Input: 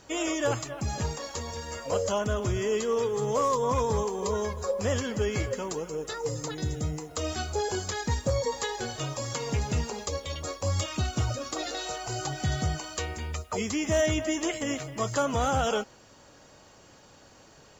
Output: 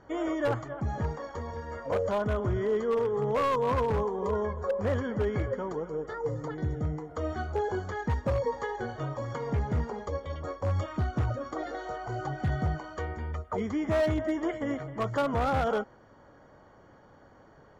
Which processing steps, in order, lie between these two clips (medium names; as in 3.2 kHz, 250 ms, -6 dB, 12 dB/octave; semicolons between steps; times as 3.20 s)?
Savitzky-Golay filter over 41 samples; wavefolder -21 dBFS